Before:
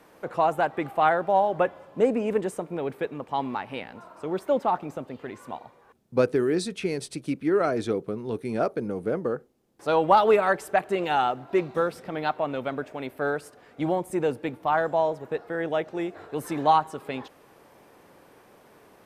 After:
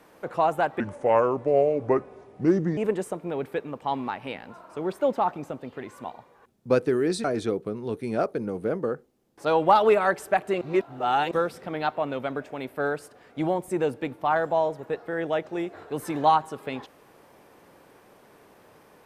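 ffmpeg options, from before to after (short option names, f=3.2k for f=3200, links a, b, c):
-filter_complex "[0:a]asplit=6[a][b][c][d][e][f];[a]atrim=end=0.804[g];[b]atrim=start=0.8:end=2.24,asetpts=PTS-STARTPTS,asetrate=32193,aresample=44100[h];[c]atrim=start=2.236:end=6.712[i];[d]atrim=start=7.658:end=11.032[j];[e]atrim=start=11.028:end=11.732,asetpts=PTS-STARTPTS,areverse[k];[f]atrim=start=11.728[l];[g][h]acrossfade=d=0.004:c1=hsin:c2=hsin[m];[m][i]acrossfade=d=0.004:c1=hsin:c2=hsin[n];[n][j]acrossfade=d=0.004:c1=hsin:c2=hsin[o];[o][k]acrossfade=d=0.004:c1=hsin:c2=hsin[p];[p][l]acrossfade=d=0.004:c1=hsin:c2=hsin"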